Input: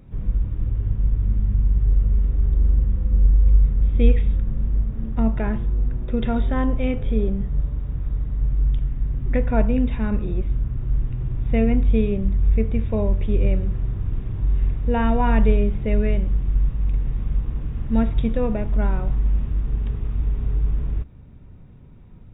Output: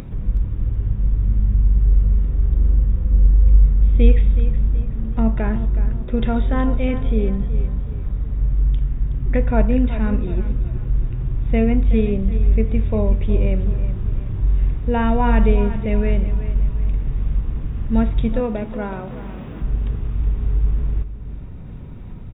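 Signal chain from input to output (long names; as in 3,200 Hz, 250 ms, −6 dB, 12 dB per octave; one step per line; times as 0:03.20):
0:18.40–0:19.62: high-pass filter 190 Hz 12 dB per octave
upward compression, threshold −26 dBFS
on a send: repeating echo 371 ms, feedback 40%, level −13 dB
on the sum: level +2 dB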